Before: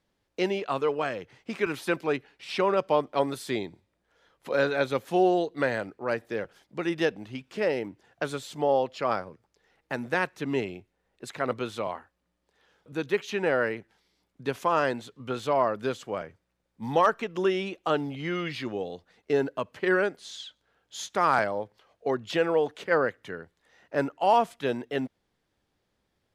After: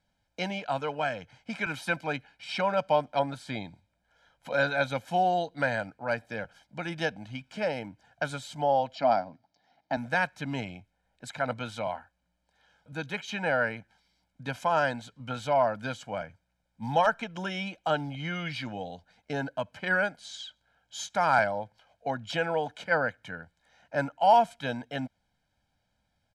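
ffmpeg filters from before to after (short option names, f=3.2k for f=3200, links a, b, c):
-filter_complex "[0:a]asettb=1/sr,asplit=3[a][b][c];[a]atrim=end=3.194[d];[b]atrim=start=3.19:end=3.65,asetpts=PTS-STARTPTS,afade=t=in:d=0.004:c=qsin,afade=t=out:st=0.456:d=0.004:c=qsin,lowpass=f=3k:p=1[e];[c]atrim=start=3.646[f];[d][e]acrossfade=d=0.004:c1=hsin:c2=qsin[g];[g][f]acrossfade=d=0.004:c1=qsin:c2=hsin,asettb=1/sr,asplit=3[h][i][j];[h]atrim=end=8.954[k];[i]atrim=start=8.95:end=9.97,asetpts=PTS-STARTPTS,afade=t=in:d=0.004:c=qsin,afade=t=out:st=1.016:d=0.004:c=qsin,highpass=140,equalizer=f=270:t=q:w=4:g=10,equalizer=f=480:t=q:w=4:g=-7,equalizer=f=700:t=q:w=4:g=9,equalizer=f=1.5k:t=q:w=4:g=-6,equalizer=f=2.6k:t=q:w=4:g=-5,equalizer=f=4.4k:t=q:w=4:g=4,lowpass=f=5.6k:w=0.5412,lowpass=f=5.6k:w=1.3066[l];[j]atrim=start=9.966[m];[k][l]acrossfade=d=0.004:c1=hsin:c2=qsin[n];[n][m]acrossfade=d=0.004:c1=qsin:c2=hsin,lowpass=10k,equalizer=f=520:t=o:w=0.25:g=-2.5,aecho=1:1:1.3:0.88,volume=-2.5dB"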